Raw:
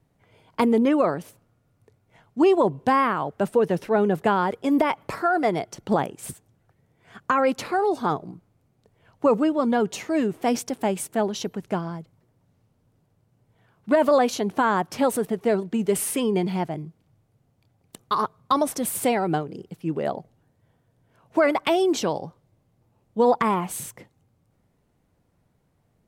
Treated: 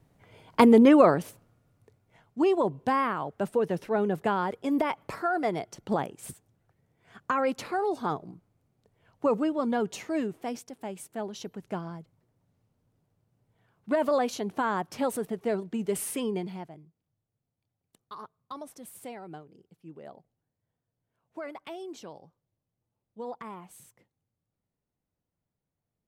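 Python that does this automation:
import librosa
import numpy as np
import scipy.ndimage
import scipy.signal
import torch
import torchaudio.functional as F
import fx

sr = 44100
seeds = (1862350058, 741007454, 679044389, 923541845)

y = fx.gain(x, sr, db=fx.line((1.16, 3.0), (2.39, -6.0), (10.16, -6.0), (10.67, -15.0), (11.86, -7.0), (16.28, -7.0), (16.86, -19.5)))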